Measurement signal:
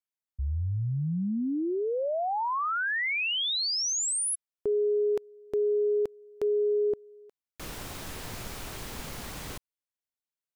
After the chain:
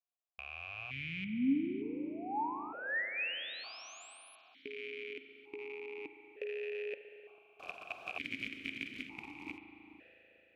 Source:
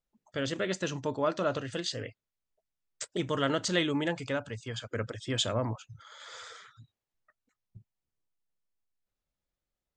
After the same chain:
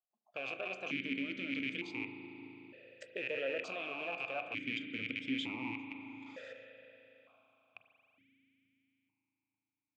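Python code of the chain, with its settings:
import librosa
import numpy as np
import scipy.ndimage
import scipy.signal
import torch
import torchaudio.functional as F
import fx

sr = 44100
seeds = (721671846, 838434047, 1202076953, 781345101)

y = fx.rattle_buzz(x, sr, strikes_db=-41.0, level_db=-20.0)
y = fx.level_steps(y, sr, step_db=12)
y = fx.echo_bbd(y, sr, ms=444, stages=4096, feedback_pct=47, wet_db=-16.5)
y = fx.rev_spring(y, sr, rt60_s=3.8, pass_ms=(37,), chirp_ms=35, drr_db=6.5)
y = fx.vowel_held(y, sr, hz=1.1)
y = y * librosa.db_to_amplitude(8.5)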